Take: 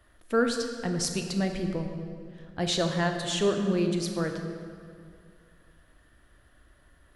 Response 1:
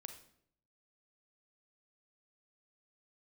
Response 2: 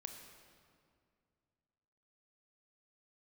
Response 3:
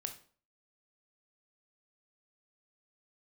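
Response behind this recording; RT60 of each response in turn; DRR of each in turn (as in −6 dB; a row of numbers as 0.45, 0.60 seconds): 2; 0.65, 2.3, 0.45 seconds; 6.5, 4.5, 5.5 decibels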